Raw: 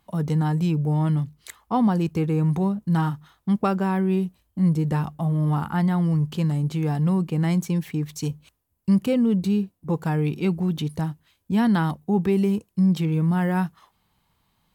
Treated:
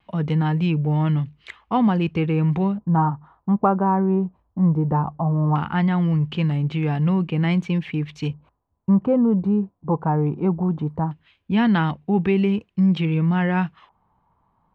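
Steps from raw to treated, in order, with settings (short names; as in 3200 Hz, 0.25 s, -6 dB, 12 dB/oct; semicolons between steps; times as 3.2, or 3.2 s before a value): LFO low-pass square 0.18 Hz 980–2700 Hz; vibrato 0.56 Hz 16 cents; gain +1.5 dB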